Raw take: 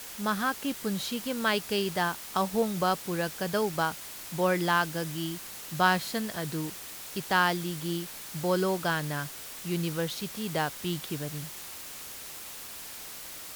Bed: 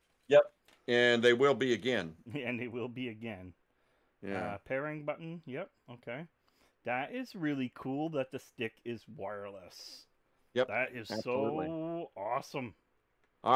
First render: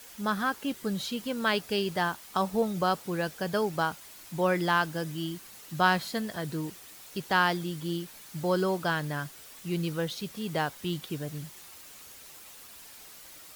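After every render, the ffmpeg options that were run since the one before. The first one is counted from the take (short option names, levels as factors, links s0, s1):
-af "afftdn=nr=8:nf=-43"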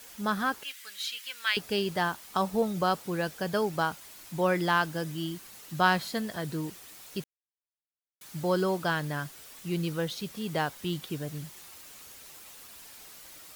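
-filter_complex "[0:a]asettb=1/sr,asplit=3[s0][s1][s2];[s0]atrim=end=0.634[s3];[s1]atrim=start=0.63:end=1.57,asetpts=PTS-STARTPTS,afade=t=in:d=0.004:c=qsin,afade=t=out:st=0.936:d=0.004:c=qsin,highpass=f=2100:t=q:w=1.6[s4];[s2]atrim=start=1.566[s5];[s3][s4]acrossfade=d=0.004:c1=hsin:c2=qsin[s6];[s6][s5]acrossfade=d=0.004:c1=qsin:c2=hsin,asplit=3[s7][s8][s9];[s7]atrim=end=7.24,asetpts=PTS-STARTPTS,afade=t=out:st=7.236:d=0.004:c=hsin[s10];[s8]atrim=start=7.24:end=8.21,asetpts=PTS-STARTPTS,volume=0[s11];[s9]atrim=start=8.21,asetpts=PTS-STARTPTS,afade=t=in:d=0.004:c=hsin[s12];[s10][s11][s12]concat=n=3:v=0:a=1"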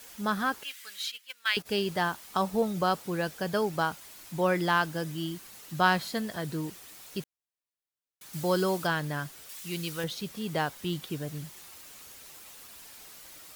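-filter_complex "[0:a]asplit=3[s0][s1][s2];[s0]afade=t=out:st=1.04:d=0.02[s3];[s1]agate=range=0.178:threshold=0.0126:ratio=16:release=100:detection=peak,afade=t=in:st=1.04:d=0.02,afade=t=out:st=1.65:d=0.02[s4];[s2]afade=t=in:st=1.65:d=0.02[s5];[s3][s4][s5]amix=inputs=3:normalize=0,asettb=1/sr,asplit=3[s6][s7][s8];[s6]atrim=end=8.334[s9];[s7]atrim=start=8.33:end=8.87,asetpts=PTS-STARTPTS,afade=t=in:d=0.004:c=qsin,afade=t=out:st=0.536:d=0.004:c=qsin,highshelf=f=3300:g=6.5[s10];[s8]atrim=start=8.866[s11];[s9][s10]acrossfade=d=0.004:c1=hsin:c2=qsin[s12];[s12][s11]acrossfade=d=0.004:c1=qsin:c2=hsin,asettb=1/sr,asplit=3[s13][s14][s15];[s13]atrim=end=9.494[s16];[s14]atrim=start=9.49:end=10.04,asetpts=PTS-STARTPTS,afade=t=in:d=0.004:c=qsin,afade=t=out:st=0.546:d=0.004:c=qsin,tiltshelf=f=1400:g=-6[s17];[s15]atrim=start=10.036[s18];[s16][s17]acrossfade=d=0.004:c1=hsin:c2=qsin[s19];[s19][s18]acrossfade=d=0.004:c1=qsin:c2=hsin"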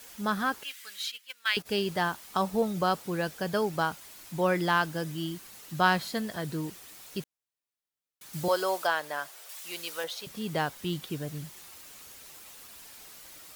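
-filter_complex "[0:a]asettb=1/sr,asplit=3[s0][s1][s2];[s0]atrim=end=8.484[s3];[s1]atrim=start=8.48:end=10.27,asetpts=PTS-STARTPTS,afade=t=in:d=0.004:c=qsin,afade=t=out:st=1.786:d=0.004:c=qsin,highpass=f=620:t=q:w=1.5[s4];[s2]atrim=start=10.266[s5];[s3][s4]acrossfade=d=0.004:c1=hsin:c2=qsin[s6];[s6][s5]acrossfade=d=0.004:c1=qsin:c2=hsin"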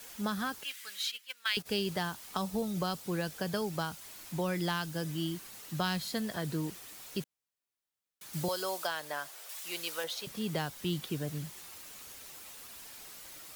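-filter_complex "[0:a]acrossover=split=200|3000[s0][s1][s2];[s1]acompressor=threshold=0.0224:ratio=6[s3];[s0][s3][s2]amix=inputs=3:normalize=0"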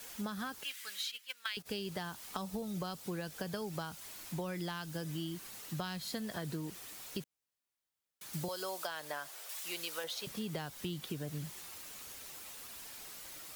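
-af "acompressor=threshold=0.0158:ratio=6"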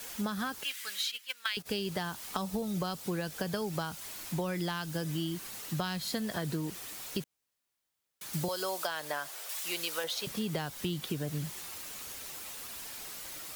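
-af "volume=1.88"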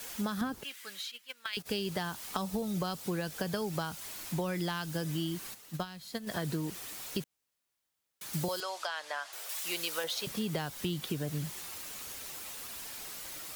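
-filter_complex "[0:a]asettb=1/sr,asplit=3[s0][s1][s2];[s0]atrim=end=0.414[s3];[s1]atrim=start=0.41:end=1.53,asetpts=PTS-STARTPTS,afade=t=in:d=0.004:c=qsin,afade=t=out:st=1.116:d=0.004:c=qsin,tiltshelf=f=680:g=7.5[s4];[s2]atrim=start=1.526[s5];[s3][s4]acrossfade=d=0.004:c1=hsin:c2=qsin[s6];[s6][s5]acrossfade=d=0.004:c1=qsin:c2=hsin,asplit=3[s7][s8][s9];[s7]afade=t=out:st=5.53:d=0.02[s10];[s8]agate=range=0.282:threshold=0.0224:ratio=16:release=100:detection=peak,afade=t=in:st=5.53:d=0.02,afade=t=out:st=6.26:d=0.02[s11];[s9]afade=t=in:st=6.26:d=0.02[s12];[s10][s11][s12]amix=inputs=3:normalize=0,asettb=1/sr,asplit=3[s13][s14][s15];[s13]atrim=end=8.604[s16];[s14]atrim=start=8.6:end=9.33,asetpts=PTS-STARTPTS,afade=t=in:d=0.004:c=qsin,afade=t=out:st=0.726:d=0.004:c=qsin,highpass=680,lowpass=6200[s17];[s15]atrim=start=9.326[s18];[s16][s17]acrossfade=d=0.004:c1=hsin:c2=qsin[s19];[s19][s18]acrossfade=d=0.004:c1=qsin:c2=hsin"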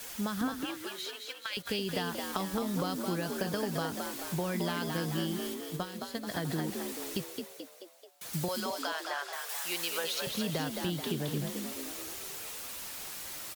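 -filter_complex "[0:a]asplit=8[s0][s1][s2][s3][s4][s5][s6][s7];[s1]adelay=217,afreqshift=59,volume=0.562[s8];[s2]adelay=434,afreqshift=118,volume=0.309[s9];[s3]adelay=651,afreqshift=177,volume=0.17[s10];[s4]adelay=868,afreqshift=236,volume=0.0933[s11];[s5]adelay=1085,afreqshift=295,volume=0.0513[s12];[s6]adelay=1302,afreqshift=354,volume=0.0282[s13];[s7]adelay=1519,afreqshift=413,volume=0.0155[s14];[s0][s8][s9][s10][s11][s12][s13][s14]amix=inputs=8:normalize=0"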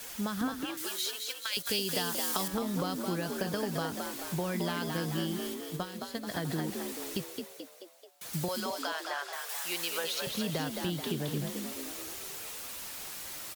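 -filter_complex "[0:a]asettb=1/sr,asplit=3[s0][s1][s2];[s0]atrim=end=0.774[s3];[s1]atrim=start=0.77:end=2.48,asetpts=PTS-STARTPTS,afade=t=in:d=0.004:c=qsin,afade=t=out:st=1.706:d=0.004:c=qsin,bass=f=250:g=-3,treble=f=4000:g=11[s4];[s2]atrim=start=2.476[s5];[s3][s4]acrossfade=d=0.004:c1=hsin:c2=qsin[s6];[s6][s5]acrossfade=d=0.004:c1=qsin:c2=hsin"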